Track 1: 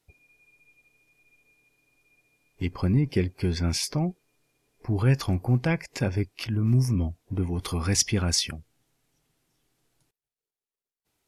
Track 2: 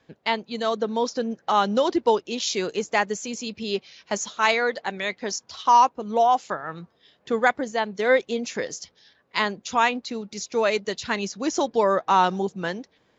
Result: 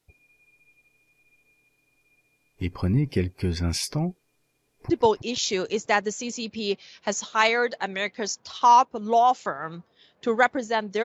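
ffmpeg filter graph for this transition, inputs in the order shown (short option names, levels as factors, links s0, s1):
-filter_complex "[0:a]apad=whole_dur=11.04,atrim=end=11.04,atrim=end=4.902[s0];[1:a]atrim=start=1.938:end=8.08[s1];[s0][s1]acrossfade=d=0.004:c1=hsin:c2=hsin,asplit=2[s2][s3];[s3]afade=t=in:st=4.63:d=0.01,afade=t=out:st=4.9:d=0.01,aecho=0:1:160|320|480|640|800|960|1120:0.501187|0.275653|0.151609|0.083385|0.0458618|0.025224|0.0138732[s4];[s2][s4]amix=inputs=2:normalize=0"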